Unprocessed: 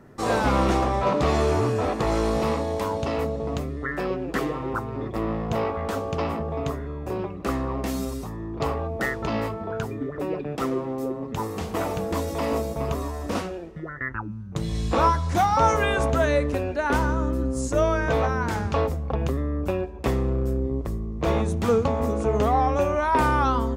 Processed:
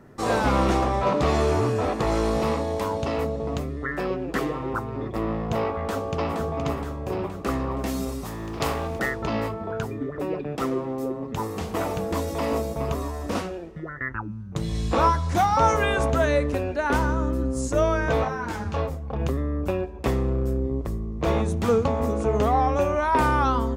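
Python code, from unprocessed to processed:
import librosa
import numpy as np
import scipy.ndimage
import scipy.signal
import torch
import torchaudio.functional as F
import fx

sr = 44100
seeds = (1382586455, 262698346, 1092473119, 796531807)

y = fx.echo_throw(x, sr, start_s=5.85, length_s=0.51, ms=470, feedback_pct=60, wet_db=-5.5)
y = fx.spec_flatten(y, sr, power=0.67, at=(8.24, 8.99), fade=0.02)
y = fx.detune_double(y, sr, cents=19, at=(18.23, 19.18), fade=0.02)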